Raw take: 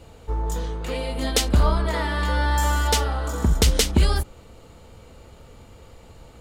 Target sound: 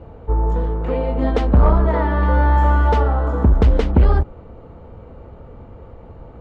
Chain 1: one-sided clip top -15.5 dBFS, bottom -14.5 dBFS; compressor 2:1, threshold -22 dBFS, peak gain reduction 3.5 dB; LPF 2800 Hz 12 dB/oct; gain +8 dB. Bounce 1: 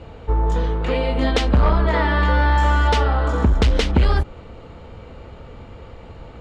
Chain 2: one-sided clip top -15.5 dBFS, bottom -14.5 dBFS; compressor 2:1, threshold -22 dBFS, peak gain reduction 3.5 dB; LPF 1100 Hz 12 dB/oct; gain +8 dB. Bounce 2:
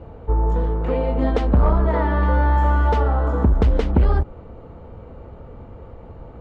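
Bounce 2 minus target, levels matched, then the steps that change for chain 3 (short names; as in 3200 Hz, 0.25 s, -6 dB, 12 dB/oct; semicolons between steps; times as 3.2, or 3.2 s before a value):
compressor: peak gain reduction +3.5 dB
remove: compressor 2:1, threshold -22 dBFS, peak gain reduction 3.5 dB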